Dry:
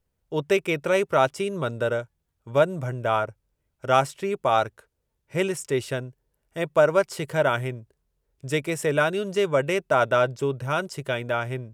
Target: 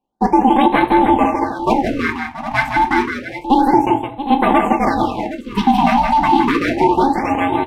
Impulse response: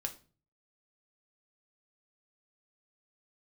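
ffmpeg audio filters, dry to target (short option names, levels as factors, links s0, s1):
-filter_complex "[0:a]bass=f=250:g=3,treble=f=4000:g=1,asetrate=67473,aresample=44100,acrusher=bits=3:mode=log:mix=0:aa=0.000001,equalizer=f=125:t=o:w=1:g=-5,equalizer=f=250:t=o:w=1:g=3,equalizer=f=1000:t=o:w=1:g=7,equalizer=f=2000:t=o:w=1:g=-9,agate=range=0.501:threshold=0.0178:ratio=16:detection=peak,asplit=3[s0][s1][s2];[s0]bandpass=f=530:t=q:w=8,volume=1[s3];[s1]bandpass=f=1840:t=q:w=8,volume=0.501[s4];[s2]bandpass=f=2480:t=q:w=8,volume=0.355[s5];[s3][s4][s5]amix=inputs=3:normalize=0,aecho=1:1:164|679|761:0.531|0.188|0.237[s6];[1:a]atrim=start_sample=2205,asetrate=48510,aresample=44100[s7];[s6][s7]afir=irnorm=-1:irlink=0,aeval=exprs='val(0)*sin(2*PI*270*n/s)':c=same,alimiter=level_in=21.1:limit=0.891:release=50:level=0:latency=1,afftfilt=real='re*(1-between(b*sr/1024,400*pow(6100/400,0.5+0.5*sin(2*PI*0.29*pts/sr))/1.41,400*pow(6100/400,0.5+0.5*sin(2*PI*0.29*pts/sr))*1.41))':imag='im*(1-between(b*sr/1024,400*pow(6100/400,0.5+0.5*sin(2*PI*0.29*pts/sr))/1.41,400*pow(6100/400,0.5+0.5*sin(2*PI*0.29*pts/sr))*1.41))':win_size=1024:overlap=0.75,volume=0.891"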